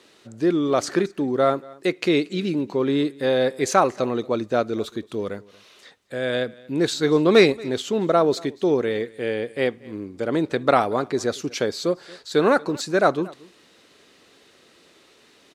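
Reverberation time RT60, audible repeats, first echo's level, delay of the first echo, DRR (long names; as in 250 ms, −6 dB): no reverb audible, 1, −23.0 dB, 231 ms, no reverb audible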